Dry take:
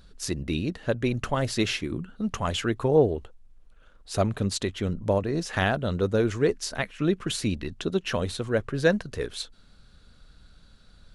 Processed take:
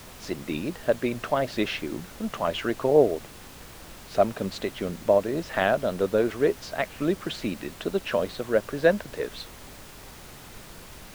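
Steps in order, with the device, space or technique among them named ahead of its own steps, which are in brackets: horn gramophone (band-pass 210–3400 Hz; peaking EQ 620 Hz +8 dB 0.37 oct; wow and flutter; pink noise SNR 17 dB)

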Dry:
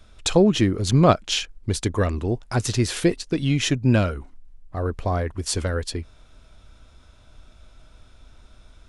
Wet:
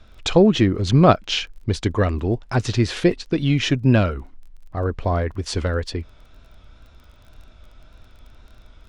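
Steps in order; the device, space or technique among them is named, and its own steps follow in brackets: lo-fi chain (low-pass 4.5 kHz 12 dB/octave; wow and flutter; crackle 20 per s -43 dBFS); trim +2.5 dB

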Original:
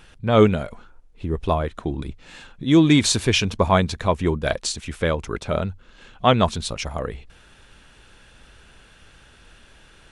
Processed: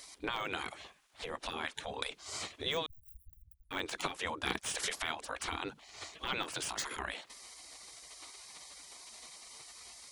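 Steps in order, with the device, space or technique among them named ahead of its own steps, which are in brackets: broadcast voice chain (high-pass 99 Hz 24 dB/octave; de-esser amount 80%; compression 4:1, threshold -30 dBFS, peak gain reduction 17.5 dB; peaking EQ 3.4 kHz +2 dB; peak limiter -24.5 dBFS, peak gain reduction 10.5 dB); spectral gate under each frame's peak -15 dB weak; 2.86–3.71 s: inverse Chebyshev band-stop 330–5700 Hz, stop band 70 dB; trim +11 dB

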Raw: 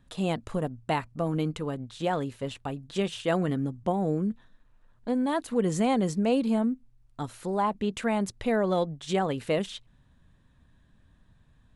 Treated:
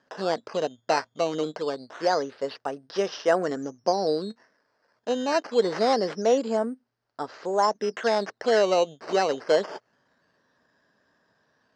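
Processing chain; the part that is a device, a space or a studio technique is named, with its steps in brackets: circuit-bent sampling toy (decimation with a swept rate 9×, swing 100% 0.25 Hz; cabinet simulation 410–5700 Hz, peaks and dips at 440 Hz +5 dB, 620 Hz +4 dB, 1.6 kHz +4 dB, 2.4 kHz -7 dB, 3.5 kHz -6 dB, 5 kHz +5 dB); trim +4 dB

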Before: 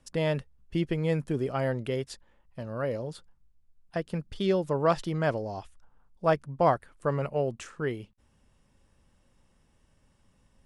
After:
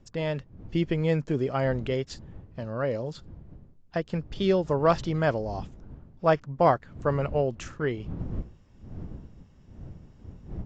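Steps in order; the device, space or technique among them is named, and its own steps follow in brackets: smartphone video outdoors (wind noise 140 Hz -44 dBFS; level rider gain up to 5 dB; trim -2.5 dB; AAC 48 kbps 16 kHz)

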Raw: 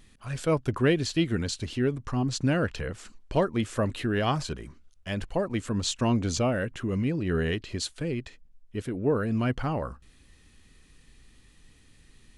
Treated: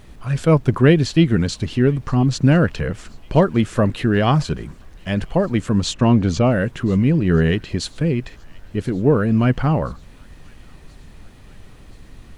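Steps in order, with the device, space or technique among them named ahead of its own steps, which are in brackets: car interior (peaking EQ 160 Hz +6 dB 0.75 oct; treble shelf 4.2 kHz -7 dB; brown noise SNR 22 dB); 5.94–6.52 s: treble shelf 7.4 kHz -11.5 dB; feedback echo behind a high-pass 1028 ms, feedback 64%, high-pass 1.8 kHz, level -24 dB; trim +8.5 dB

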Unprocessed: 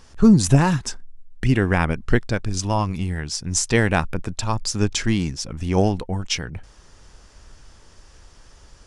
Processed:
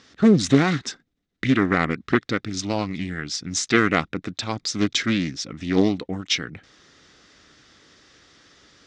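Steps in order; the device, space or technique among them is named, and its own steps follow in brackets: full-range speaker at full volume (loudspeaker Doppler distortion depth 0.86 ms; cabinet simulation 160–6800 Hz, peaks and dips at 290 Hz +6 dB, 610 Hz -3 dB, 920 Hz -9 dB, 1.3 kHz +3 dB, 2 kHz +7 dB, 3.7 kHz +9 dB); trim -1 dB

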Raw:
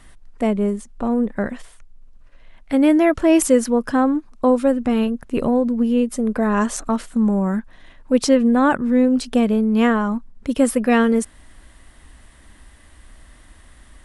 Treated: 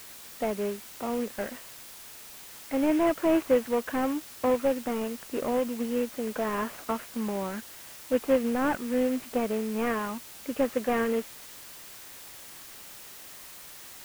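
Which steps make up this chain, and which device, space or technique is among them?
army field radio (band-pass 360–3000 Hz; CVSD coder 16 kbps; white noise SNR 16 dB); trim -5 dB

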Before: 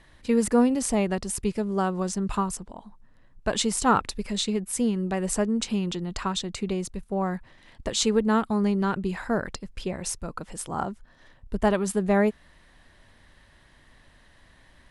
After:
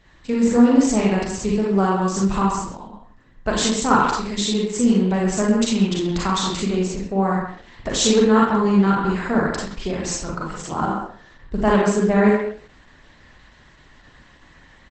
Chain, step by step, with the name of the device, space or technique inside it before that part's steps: speakerphone in a meeting room (reverberation RT60 0.40 s, pre-delay 34 ms, DRR -3 dB; speakerphone echo 130 ms, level -6 dB; level rider gain up to 3.5 dB; Opus 12 kbps 48 kHz)

